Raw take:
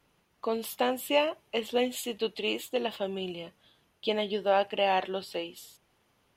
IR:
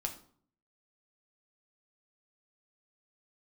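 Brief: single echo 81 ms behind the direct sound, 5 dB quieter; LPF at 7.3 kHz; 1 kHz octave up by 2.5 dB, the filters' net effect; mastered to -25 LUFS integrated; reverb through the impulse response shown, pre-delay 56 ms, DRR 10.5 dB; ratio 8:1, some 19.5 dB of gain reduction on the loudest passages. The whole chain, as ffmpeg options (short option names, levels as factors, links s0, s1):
-filter_complex "[0:a]lowpass=7300,equalizer=f=1000:t=o:g=3.5,acompressor=threshold=0.0112:ratio=8,aecho=1:1:81:0.562,asplit=2[s0][s1];[1:a]atrim=start_sample=2205,adelay=56[s2];[s1][s2]afir=irnorm=-1:irlink=0,volume=0.266[s3];[s0][s3]amix=inputs=2:normalize=0,volume=7.5"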